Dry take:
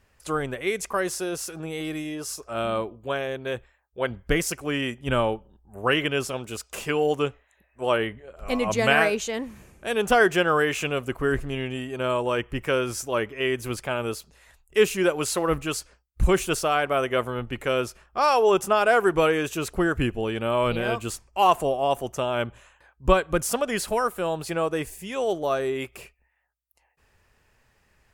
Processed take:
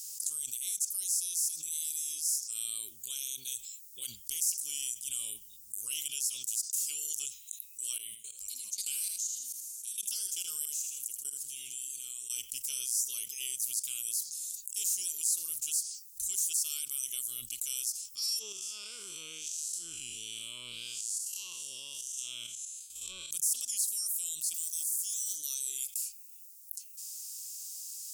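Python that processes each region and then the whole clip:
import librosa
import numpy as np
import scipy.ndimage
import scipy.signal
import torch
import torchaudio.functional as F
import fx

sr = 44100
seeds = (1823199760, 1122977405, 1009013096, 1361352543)

y = fx.chain(x, sr, fx.low_shelf(hz=81.0, db=-2.5),
    fx.level_steps(step_db=22),
    fx.echo_feedback(ms=79, feedback_pct=27, wet_db=-11.0), at=(7.98, 12.3))
y = fx.chain(y, sr, fx.spec_blur(span_ms=171.0),
    fx.env_lowpass_down(base_hz=2200.0, full_db=-20.0),
    fx.level_steps(step_db=11), at=(18.39, 23.31))
y = fx.chain(y, sr, fx.block_float(bits=7),
    fx.highpass(hz=230.0, slope=24),
    fx.band_shelf(hz=1200.0, db=-11.5, octaves=2.4), at=(24.54, 25.37))
y = scipy.signal.sosfilt(scipy.signal.cheby2(4, 60, 1900.0, 'highpass', fs=sr, output='sos'), y)
y = fx.env_flatten(y, sr, amount_pct=70)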